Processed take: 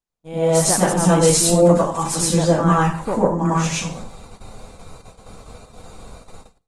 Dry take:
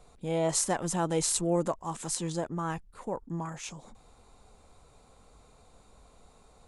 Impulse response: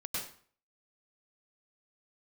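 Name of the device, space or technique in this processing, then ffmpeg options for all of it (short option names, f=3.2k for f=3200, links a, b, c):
speakerphone in a meeting room: -filter_complex "[1:a]atrim=start_sample=2205[a];[0:a][a]afir=irnorm=-1:irlink=0,dynaudnorm=f=190:g=5:m=16dB,agate=range=-32dB:threshold=-38dB:ratio=16:detection=peak" -ar 48000 -c:a libopus -b:a 24k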